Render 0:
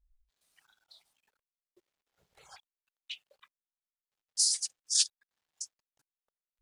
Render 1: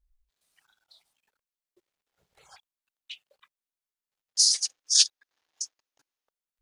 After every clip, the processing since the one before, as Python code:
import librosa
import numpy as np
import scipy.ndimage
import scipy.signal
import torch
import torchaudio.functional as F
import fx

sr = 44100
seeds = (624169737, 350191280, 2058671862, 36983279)

y = fx.spec_box(x, sr, start_s=4.35, length_s=1.94, low_hz=250.0, high_hz=6900.0, gain_db=8)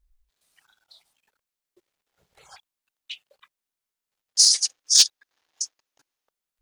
y = np.clip(x, -10.0 ** (-11.5 / 20.0), 10.0 ** (-11.5 / 20.0))
y = y * librosa.db_to_amplitude(5.0)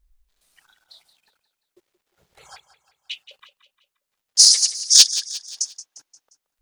y = fx.echo_feedback(x, sr, ms=176, feedback_pct=47, wet_db=-14.0)
y = y * librosa.db_to_amplitude(4.5)